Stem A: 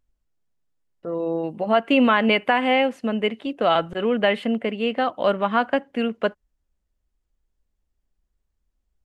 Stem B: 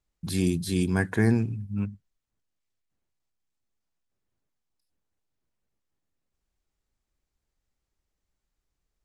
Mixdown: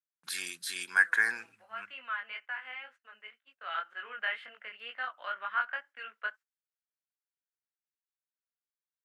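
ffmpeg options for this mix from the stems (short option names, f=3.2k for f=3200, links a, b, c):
-filter_complex "[0:a]lowpass=f=3.6k:p=1,flanger=delay=19:depth=5:speed=2,volume=-10.5dB,afade=t=in:st=3.53:d=0.37:silence=0.375837[a];[1:a]volume=-1.5dB[b];[a][b]amix=inputs=2:normalize=0,agate=range=-21dB:threshold=-50dB:ratio=16:detection=peak,highpass=f=1.5k:t=q:w=3.7"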